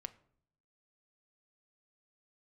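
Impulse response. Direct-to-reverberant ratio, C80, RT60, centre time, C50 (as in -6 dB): 10.5 dB, 21.5 dB, 0.65 s, 3 ms, 18.0 dB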